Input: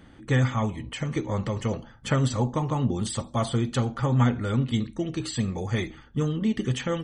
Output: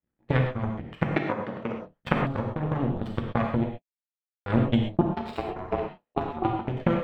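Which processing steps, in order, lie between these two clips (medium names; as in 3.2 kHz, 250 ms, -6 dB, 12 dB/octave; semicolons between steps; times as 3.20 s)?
treble shelf 5.3 kHz +3.5 dB; compression 12:1, threshold -28 dBFS, peak gain reduction 13 dB; rotary cabinet horn 7.5 Hz, later 1.2 Hz, at 2.88 s; power-law waveshaper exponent 3; 1.03–1.76 s: band-pass 230–7200 Hz; 5.01–6.68 s: ring modulator 550 Hz; distance through air 450 m; 3.68–4.46 s: mute; gated-style reverb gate 150 ms flat, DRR 1.5 dB; loudness maximiser +24 dB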